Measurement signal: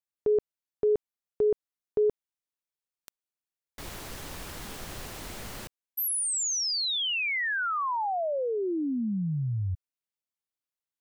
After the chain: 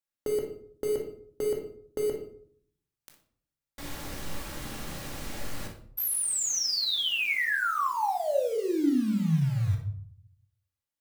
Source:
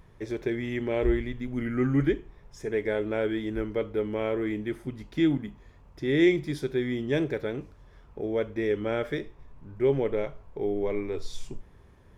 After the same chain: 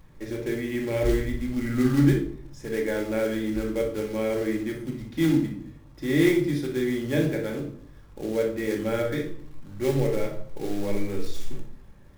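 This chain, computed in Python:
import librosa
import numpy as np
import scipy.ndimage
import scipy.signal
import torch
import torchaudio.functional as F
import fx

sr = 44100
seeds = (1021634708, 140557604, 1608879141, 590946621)

y = fx.quant_float(x, sr, bits=2)
y = fx.room_flutter(y, sr, wall_m=10.2, rt60_s=0.28)
y = fx.room_shoebox(y, sr, seeds[0], volume_m3=740.0, walls='furnished', distance_m=2.3)
y = y * 10.0 ** (-2.0 / 20.0)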